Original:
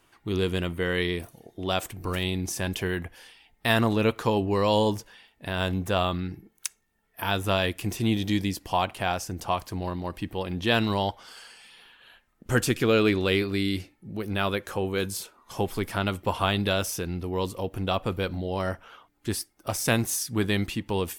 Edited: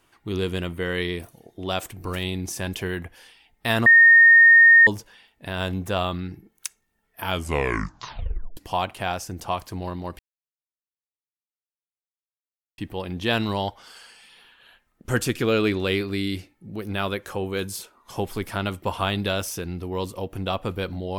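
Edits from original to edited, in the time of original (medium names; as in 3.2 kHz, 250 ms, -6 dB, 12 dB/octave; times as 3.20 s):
3.86–4.87 s: bleep 1.84 kHz -8.5 dBFS
7.23 s: tape stop 1.34 s
10.19 s: insert silence 2.59 s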